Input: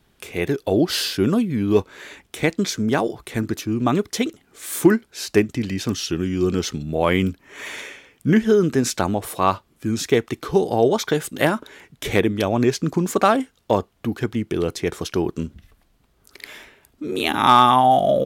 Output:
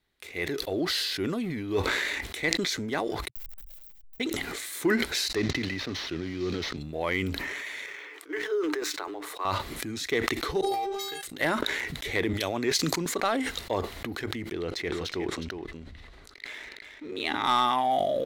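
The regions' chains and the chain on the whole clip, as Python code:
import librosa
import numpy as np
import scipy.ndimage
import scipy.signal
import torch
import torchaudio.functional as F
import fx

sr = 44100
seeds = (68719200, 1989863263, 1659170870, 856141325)

y = fx.chain(x, sr, fx.delta_hold(step_db=-24.5),
    fx.cheby2_bandstop(low_hz=120.0, high_hz=5200.0, order=4, stop_db=80),
    fx.band_squash(depth_pct=100), at=(3.28, 4.2))
y = fx.chain(y, sr, fx.cvsd(bps=32000),
    fx.band_squash(depth_pct=40), at=(5.35, 6.77))
y = fx.chain(y, sr, fx.cheby_ripple_highpass(hz=290.0, ripple_db=9),
    fx.resample_linear(factor=2), at=(7.86, 9.45))
y = fx.chain(y, sr, fx.high_shelf(hz=5800.0, db=10.5),
    fx.stiff_resonator(f0_hz=390.0, decay_s=0.66, stiffness=0.008), at=(10.61, 11.23))
y = fx.chain(y, sr, fx.high_shelf(hz=2700.0, db=11.5),
    fx.band_widen(depth_pct=100), at=(12.33, 13.06))
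y = fx.chain(y, sr, fx.bessel_lowpass(hz=4900.0, order=2),
    fx.echo_single(ms=364, db=-7.0), at=(14.53, 17.45))
y = fx.graphic_eq_31(y, sr, hz=(125, 200, 2000, 4000), db=(-10, -8, 10, 9))
y = fx.leveller(y, sr, passes=1)
y = fx.sustainer(y, sr, db_per_s=22.0)
y = F.gain(torch.from_numpy(y), -14.5).numpy()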